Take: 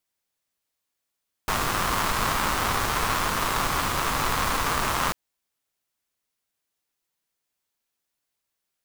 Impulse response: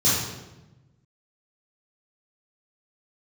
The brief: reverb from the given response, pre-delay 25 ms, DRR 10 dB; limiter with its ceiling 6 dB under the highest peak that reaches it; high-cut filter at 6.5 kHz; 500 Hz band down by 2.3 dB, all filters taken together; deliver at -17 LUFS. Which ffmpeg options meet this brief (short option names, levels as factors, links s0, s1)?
-filter_complex "[0:a]lowpass=6500,equalizer=f=500:t=o:g=-3,alimiter=limit=0.188:level=0:latency=1,asplit=2[s0][s1];[1:a]atrim=start_sample=2205,adelay=25[s2];[s1][s2]afir=irnorm=-1:irlink=0,volume=0.0531[s3];[s0][s3]amix=inputs=2:normalize=0,volume=2.99"